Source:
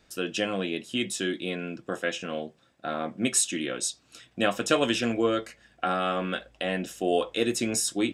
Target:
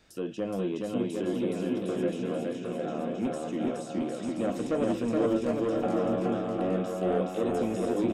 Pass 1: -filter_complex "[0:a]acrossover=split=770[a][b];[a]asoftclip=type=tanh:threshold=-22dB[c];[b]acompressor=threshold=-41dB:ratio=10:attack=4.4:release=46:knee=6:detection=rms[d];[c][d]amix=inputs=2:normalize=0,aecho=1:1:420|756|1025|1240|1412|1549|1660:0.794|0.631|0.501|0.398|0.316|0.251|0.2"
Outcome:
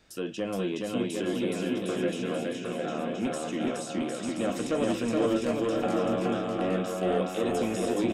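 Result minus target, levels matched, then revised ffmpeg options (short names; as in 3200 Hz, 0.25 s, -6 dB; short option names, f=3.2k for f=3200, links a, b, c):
compressor: peak gain reduction -8 dB
-filter_complex "[0:a]acrossover=split=770[a][b];[a]asoftclip=type=tanh:threshold=-22dB[c];[b]acompressor=threshold=-50dB:ratio=10:attack=4.4:release=46:knee=6:detection=rms[d];[c][d]amix=inputs=2:normalize=0,aecho=1:1:420|756|1025|1240|1412|1549|1660:0.794|0.631|0.501|0.398|0.316|0.251|0.2"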